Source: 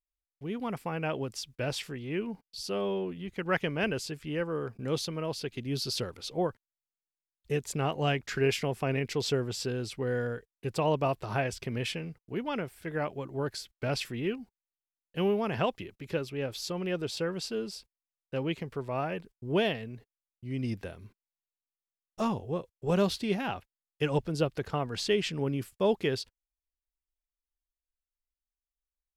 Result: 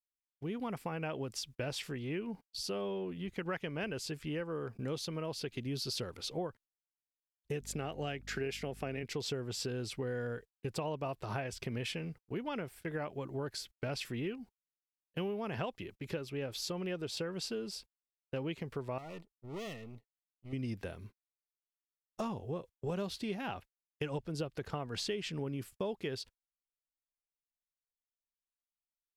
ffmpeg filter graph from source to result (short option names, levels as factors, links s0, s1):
-filter_complex "[0:a]asettb=1/sr,asplit=3[s0][s1][s2];[s0]atrim=end=7.614[s3];[s1]atrim=start=7.61:end=9.03,asetpts=PTS-STARTPTS,afade=t=in:d=0.004:c=qsin,afade=t=out:st=1.416:d=0.004:c=qsin,highpass=140,equalizer=f=1000:w=5.3:g=-9.5,aeval=exprs='val(0)+0.00447*(sin(2*PI*50*n/s)+sin(2*PI*2*50*n/s)/2+sin(2*PI*3*50*n/s)/3+sin(2*PI*4*50*n/s)/4+sin(2*PI*5*50*n/s)/5)':c=same[s4];[s2]atrim=start=9.026[s5];[s3][s4]acrossfade=d=0.004:c1=hsin:c2=qsin[s6];[s6][s5]acrossfade=d=0.004:c1=qsin:c2=hsin,asettb=1/sr,asplit=3[s7][s8][s9];[s7]atrim=end=18.984[s10];[s8]atrim=start=18.98:end=20.53,asetpts=PTS-STARTPTS,afade=t=in:d=0.004:c=qsin,afade=t=out:st=1.546:d=0.004:c=qsin,aeval=exprs='if(lt(val(0),0),0.251*val(0),val(0))':c=same,aeval=exprs='(tanh(79.4*val(0)+0.3)-tanh(0.3))/79.4':c=same,asuperstop=centerf=1600:order=20:qfactor=4.8[s11];[s9]atrim=start=20.526[s12];[s10][s11]acrossfade=d=0.004:c1=hsin:c2=qsin[s13];[s13][s12]acrossfade=d=0.004:c1=qsin:c2=hsin,agate=range=0.126:threshold=0.00316:ratio=16:detection=peak,acompressor=threshold=0.0178:ratio=5"